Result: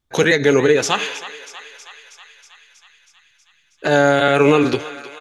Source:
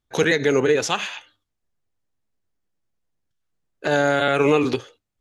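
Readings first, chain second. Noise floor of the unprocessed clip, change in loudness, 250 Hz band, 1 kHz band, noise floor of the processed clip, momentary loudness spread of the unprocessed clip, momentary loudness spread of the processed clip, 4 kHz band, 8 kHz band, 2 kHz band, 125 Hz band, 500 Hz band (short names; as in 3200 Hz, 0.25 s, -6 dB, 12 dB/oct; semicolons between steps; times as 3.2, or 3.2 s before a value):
-80 dBFS, +4.5 dB, +5.0 dB, +4.5 dB, -60 dBFS, 12 LU, 18 LU, +4.5 dB, +4.5 dB, +4.5 dB, +5.0 dB, +4.5 dB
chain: vibrato 1.4 Hz 8.6 cents; doubler 14 ms -13.5 dB; thinning echo 0.32 s, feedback 72%, high-pass 690 Hz, level -14 dB; gain +4 dB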